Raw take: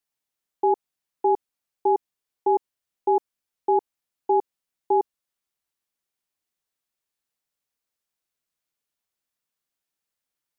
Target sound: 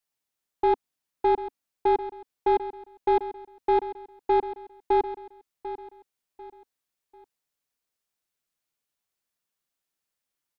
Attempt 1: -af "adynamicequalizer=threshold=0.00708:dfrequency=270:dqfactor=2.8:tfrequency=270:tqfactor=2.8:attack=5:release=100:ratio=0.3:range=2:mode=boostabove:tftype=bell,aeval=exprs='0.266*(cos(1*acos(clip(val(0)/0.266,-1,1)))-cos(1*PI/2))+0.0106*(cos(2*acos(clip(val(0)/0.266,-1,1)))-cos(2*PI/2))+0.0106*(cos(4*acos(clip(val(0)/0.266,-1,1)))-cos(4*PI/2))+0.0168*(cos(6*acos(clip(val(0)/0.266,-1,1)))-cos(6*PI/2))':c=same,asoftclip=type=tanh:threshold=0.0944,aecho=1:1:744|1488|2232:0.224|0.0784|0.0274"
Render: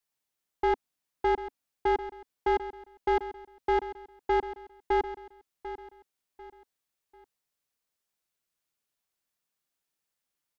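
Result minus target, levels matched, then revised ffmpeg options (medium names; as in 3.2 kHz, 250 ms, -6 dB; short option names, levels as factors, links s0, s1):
saturation: distortion +10 dB
-af "adynamicequalizer=threshold=0.00708:dfrequency=270:dqfactor=2.8:tfrequency=270:tqfactor=2.8:attack=5:release=100:ratio=0.3:range=2:mode=boostabove:tftype=bell,aeval=exprs='0.266*(cos(1*acos(clip(val(0)/0.266,-1,1)))-cos(1*PI/2))+0.0106*(cos(2*acos(clip(val(0)/0.266,-1,1)))-cos(2*PI/2))+0.0106*(cos(4*acos(clip(val(0)/0.266,-1,1)))-cos(4*PI/2))+0.0168*(cos(6*acos(clip(val(0)/0.266,-1,1)))-cos(6*PI/2))':c=same,asoftclip=type=tanh:threshold=0.237,aecho=1:1:744|1488|2232:0.224|0.0784|0.0274"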